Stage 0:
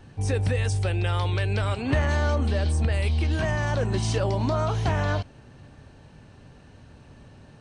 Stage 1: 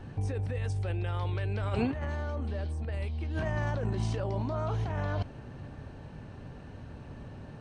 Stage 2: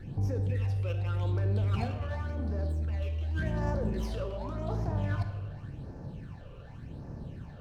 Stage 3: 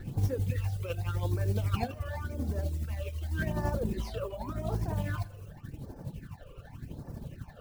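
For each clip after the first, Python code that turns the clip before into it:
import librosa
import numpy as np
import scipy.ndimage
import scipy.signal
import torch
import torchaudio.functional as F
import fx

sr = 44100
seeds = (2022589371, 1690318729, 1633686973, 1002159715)

y1 = fx.high_shelf(x, sr, hz=3000.0, db=-11.5)
y1 = fx.over_compress(y1, sr, threshold_db=-30.0, ratio=-1.0)
y1 = y1 * librosa.db_to_amplitude(-1.5)
y2 = fx.phaser_stages(y1, sr, stages=8, low_hz=230.0, high_hz=3100.0, hz=0.88, feedback_pct=40)
y2 = fx.room_shoebox(y2, sr, seeds[0], volume_m3=880.0, walls='mixed', distance_m=0.79)
y2 = fx.running_max(y2, sr, window=3)
y3 = fx.mod_noise(y2, sr, seeds[1], snr_db=25)
y3 = fx.dereverb_blind(y3, sr, rt60_s=1.2)
y3 = y3 * (1.0 - 0.5 / 2.0 + 0.5 / 2.0 * np.cos(2.0 * np.pi * 12.0 * (np.arange(len(y3)) / sr)))
y3 = y3 * librosa.db_to_amplitude(4.5)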